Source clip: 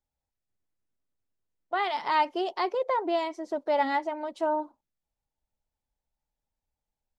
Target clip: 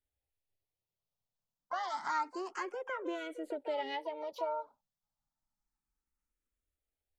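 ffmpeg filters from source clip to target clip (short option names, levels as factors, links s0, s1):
-filter_complex "[0:a]acompressor=threshold=0.02:ratio=2,asplit=2[s0][s1];[s1]asetrate=66075,aresample=44100,atempo=0.66742,volume=0.562[s2];[s0][s2]amix=inputs=2:normalize=0,asplit=2[s3][s4];[s4]afreqshift=0.29[s5];[s3][s5]amix=inputs=2:normalize=1,volume=0.75"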